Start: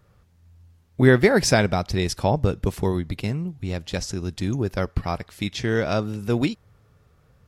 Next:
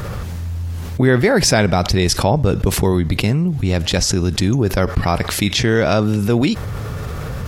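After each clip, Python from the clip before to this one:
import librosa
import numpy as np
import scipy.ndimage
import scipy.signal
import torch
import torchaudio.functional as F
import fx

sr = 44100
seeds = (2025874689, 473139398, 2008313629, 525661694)

y = fx.env_flatten(x, sr, amount_pct=70)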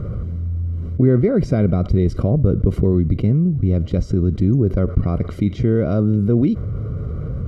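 y = scipy.signal.lfilter(np.full(51, 1.0 / 51), 1.0, x)
y = F.gain(torch.from_numpy(y), 1.5).numpy()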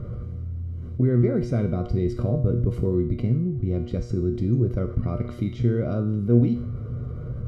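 y = fx.comb_fb(x, sr, f0_hz=120.0, decay_s=0.57, harmonics='all', damping=0.0, mix_pct=80)
y = F.gain(torch.from_numpy(y), 3.5).numpy()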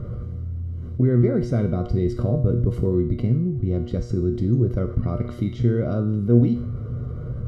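y = fx.notch(x, sr, hz=2400.0, q=9.5)
y = F.gain(torch.from_numpy(y), 2.0).numpy()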